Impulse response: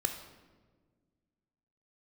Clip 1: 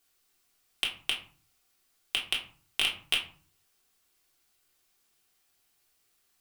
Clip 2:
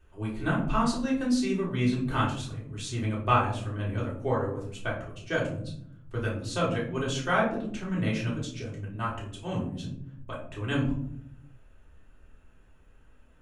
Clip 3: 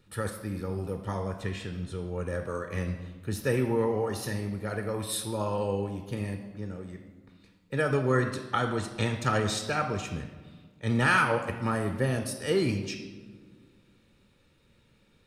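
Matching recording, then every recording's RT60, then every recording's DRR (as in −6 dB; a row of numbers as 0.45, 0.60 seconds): 3; 0.45, 0.65, 1.5 seconds; −3.0, −5.5, 5.0 decibels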